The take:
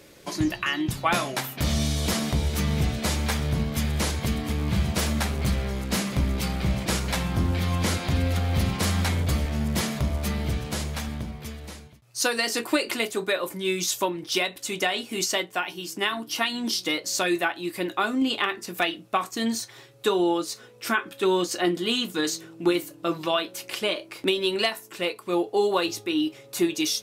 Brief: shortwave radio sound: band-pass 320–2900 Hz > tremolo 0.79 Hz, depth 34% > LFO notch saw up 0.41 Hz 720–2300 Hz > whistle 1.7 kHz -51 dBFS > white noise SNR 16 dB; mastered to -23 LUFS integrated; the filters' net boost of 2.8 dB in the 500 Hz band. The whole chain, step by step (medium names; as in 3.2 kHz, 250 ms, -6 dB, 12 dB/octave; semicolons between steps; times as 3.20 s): band-pass 320–2900 Hz; peaking EQ 500 Hz +5.5 dB; tremolo 0.79 Hz, depth 34%; LFO notch saw up 0.41 Hz 720–2300 Hz; whistle 1.7 kHz -51 dBFS; white noise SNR 16 dB; trim +8.5 dB